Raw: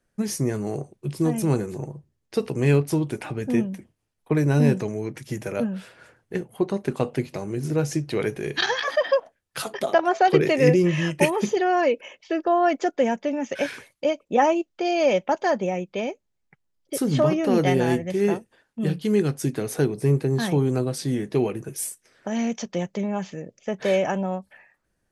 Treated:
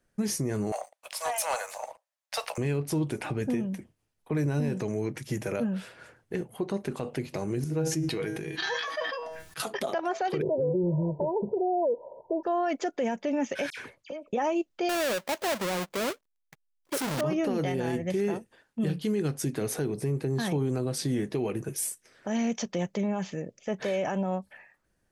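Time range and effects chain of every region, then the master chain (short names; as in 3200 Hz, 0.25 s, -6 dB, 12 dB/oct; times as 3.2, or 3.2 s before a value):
0.72–2.58 steep high-pass 570 Hz 72 dB/oct + sample leveller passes 2
7.64–9.6 notch 560 Hz, Q 6 + resonator 160 Hz, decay 0.24 s, mix 80% + sustainer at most 33 dB/s
10.42–12.43 switching spikes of -18 dBFS + brick-wall FIR low-pass 1000 Hz + comb 1.9 ms, depth 59%
13.7–14.33 high shelf 10000 Hz -10.5 dB + compressor 10:1, threshold -34 dBFS + dispersion lows, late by 74 ms, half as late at 2500 Hz
14.89–17.21 half-waves squared off + low shelf 230 Hz -10 dB
whole clip: compressor 2.5:1, threshold -22 dBFS; limiter -20.5 dBFS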